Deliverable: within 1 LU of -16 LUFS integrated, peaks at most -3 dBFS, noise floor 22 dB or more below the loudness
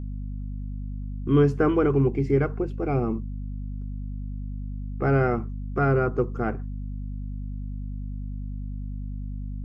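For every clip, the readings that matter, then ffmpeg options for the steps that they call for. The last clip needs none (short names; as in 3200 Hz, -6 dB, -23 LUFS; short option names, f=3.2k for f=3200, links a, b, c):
hum 50 Hz; harmonics up to 250 Hz; hum level -30 dBFS; loudness -27.5 LUFS; peak -9.5 dBFS; loudness target -16.0 LUFS
-> -af "bandreject=f=50:t=h:w=4,bandreject=f=100:t=h:w=4,bandreject=f=150:t=h:w=4,bandreject=f=200:t=h:w=4,bandreject=f=250:t=h:w=4"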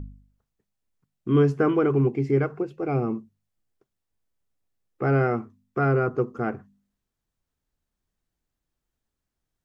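hum none; loudness -24.5 LUFS; peak -9.5 dBFS; loudness target -16.0 LUFS
-> -af "volume=8.5dB,alimiter=limit=-3dB:level=0:latency=1"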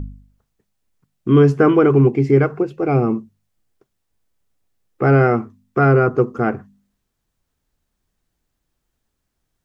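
loudness -16.0 LUFS; peak -3.0 dBFS; noise floor -75 dBFS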